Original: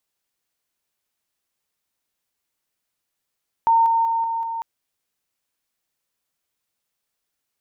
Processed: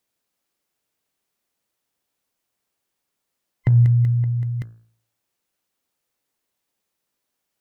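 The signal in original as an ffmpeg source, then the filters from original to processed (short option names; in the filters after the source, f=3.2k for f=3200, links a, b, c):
-f lavfi -i "aevalsrc='pow(10,(-12.5-3*floor(t/0.19))/20)*sin(2*PI*914*t)':d=0.95:s=44100"
-af "afftfilt=real='real(if(between(b,1,1008),(2*floor((b-1)/48)+1)*48-b,b),0)':imag='imag(if(between(b,1,1008),(2*floor((b-1)/48)+1)*48-b,b),0)*if(between(b,1,1008),-1,1)':win_size=2048:overlap=0.75,equalizer=f=330:w=0.36:g=6,bandreject=f=56.8:t=h:w=4,bandreject=f=113.6:t=h:w=4,bandreject=f=170.4:t=h:w=4,bandreject=f=227.2:t=h:w=4,bandreject=f=284:t=h:w=4,bandreject=f=340.8:t=h:w=4,bandreject=f=397.6:t=h:w=4,bandreject=f=454.4:t=h:w=4,bandreject=f=511.2:t=h:w=4,bandreject=f=568:t=h:w=4,bandreject=f=624.8:t=h:w=4,bandreject=f=681.6:t=h:w=4,bandreject=f=738.4:t=h:w=4,bandreject=f=795.2:t=h:w=4,bandreject=f=852:t=h:w=4,bandreject=f=908.8:t=h:w=4,bandreject=f=965.6:t=h:w=4,bandreject=f=1.0224k:t=h:w=4,bandreject=f=1.0792k:t=h:w=4,bandreject=f=1.136k:t=h:w=4,bandreject=f=1.1928k:t=h:w=4,bandreject=f=1.2496k:t=h:w=4,bandreject=f=1.3064k:t=h:w=4,bandreject=f=1.3632k:t=h:w=4,bandreject=f=1.42k:t=h:w=4,bandreject=f=1.4768k:t=h:w=4,bandreject=f=1.5336k:t=h:w=4,bandreject=f=1.5904k:t=h:w=4,bandreject=f=1.6472k:t=h:w=4,bandreject=f=1.704k:t=h:w=4"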